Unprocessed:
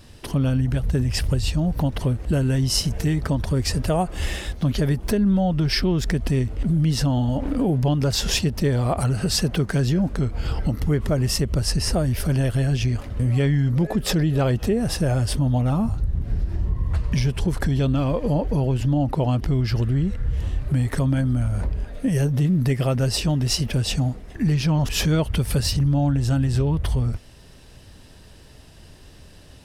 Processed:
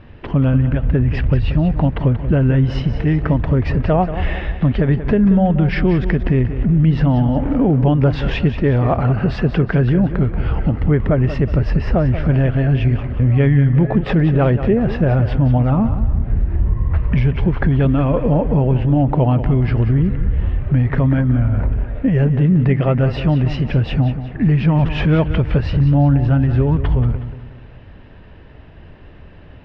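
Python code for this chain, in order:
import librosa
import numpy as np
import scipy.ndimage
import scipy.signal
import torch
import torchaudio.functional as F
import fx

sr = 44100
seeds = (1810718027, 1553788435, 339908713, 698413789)

y = scipy.signal.sosfilt(scipy.signal.butter(4, 2500.0, 'lowpass', fs=sr, output='sos'), x)
y = fx.echo_feedback(y, sr, ms=183, feedback_pct=43, wet_db=-11.5)
y = y * 10.0 ** (6.0 / 20.0)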